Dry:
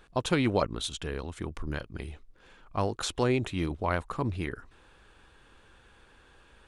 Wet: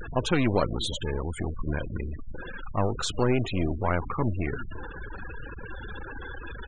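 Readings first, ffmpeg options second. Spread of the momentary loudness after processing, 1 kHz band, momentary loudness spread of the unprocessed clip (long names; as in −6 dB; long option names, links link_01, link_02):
15 LU, +2.0 dB, 12 LU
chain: -filter_complex "[0:a]aeval=exprs='val(0)+0.5*0.0422*sgn(val(0))':channel_layout=same,aeval=exprs='0.299*(cos(1*acos(clip(val(0)/0.299,-1,1)))-cos(1*PI/2))+0.00237*(cos(4*acos(clip(val(0)/0.299,-1,1)))-cos(4*PI/2))+0.00237*(cos(6*acos(clip(val(0)/0.299,-1,1)))-cos(6*PI/2))+0.00841*(cos(7*acos(clip(val(0)/0.299,-1,1)))-cos(7*PI/2))+0.0299*(cos(8*acos(clip(val(0)/0.299,-1,1)))-cos(8*PI/2))':channel_layout=same,asplit=2[link_01][link_02];[link_02]adelay=347,lowpass=frequency=920:poles=1,volume=-17dB,asplit=2[link_03][link_04];[link_04]adelay=347,lowpass=frequency=920:poles=1,volume=0.35,asplit=2[link_05][link_06];[link_06]adelay=347,lowpass=frequency=920:poles=1,volume=0.35[link_07];[link_03][link_05][link_07]amix=inputs=3:normalize=0[link_08];[link_01][link_08]amix=inputs=2:normalize=0,afftfilt=real='re*gte(hypot(re,im),0.0355)':imag='im*gte(hypot(re,im),0.0355)':win_size=1024:overlap=0.75"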